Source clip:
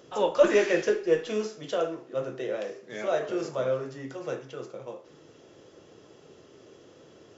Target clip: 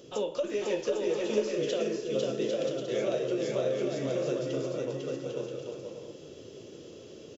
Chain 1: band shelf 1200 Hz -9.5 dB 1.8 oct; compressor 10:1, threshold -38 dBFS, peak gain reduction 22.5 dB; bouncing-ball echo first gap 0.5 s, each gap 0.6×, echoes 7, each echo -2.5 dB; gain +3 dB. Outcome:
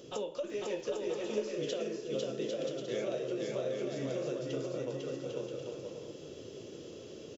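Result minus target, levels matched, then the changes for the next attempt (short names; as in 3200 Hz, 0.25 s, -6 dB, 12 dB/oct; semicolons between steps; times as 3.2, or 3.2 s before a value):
compressor: peak gain reduction +6.5 dB
change: compressor 10:1, threshold -31 dBFS, peak gain reduction 16.5 dB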